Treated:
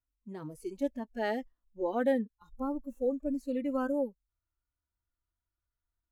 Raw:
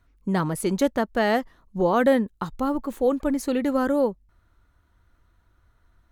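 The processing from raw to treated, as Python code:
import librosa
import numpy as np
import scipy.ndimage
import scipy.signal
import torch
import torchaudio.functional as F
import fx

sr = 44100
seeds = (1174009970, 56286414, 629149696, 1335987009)

y = fx.noise_reduce_blind(x, sr, reduce_db=17)
y = fx.hpss(y, sr, part='percussive', gain_db=-16)
y = y * librosa.db_to_amplitude(-8.5)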